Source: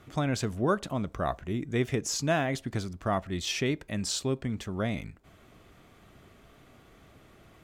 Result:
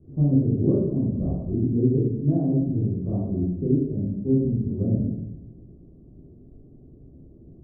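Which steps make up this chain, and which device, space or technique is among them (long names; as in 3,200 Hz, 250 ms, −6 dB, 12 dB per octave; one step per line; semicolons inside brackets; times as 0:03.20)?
next room (low-pass filter 390 Hz 24 dB per octave; convolution reverb RT60 0.90 s, pre-delay 10 ms, DRR −8.5 dB)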